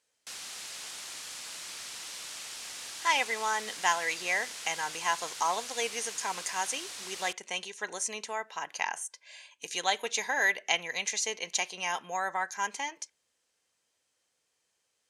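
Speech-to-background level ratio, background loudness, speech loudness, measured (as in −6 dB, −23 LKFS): 8.0 dB, −39.5 LKFS, −31.5 LKFS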